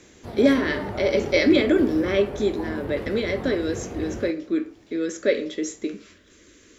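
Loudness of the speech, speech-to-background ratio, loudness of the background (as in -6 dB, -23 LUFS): -24.0 LUFS, 10.0 dB, -34.0 LUFS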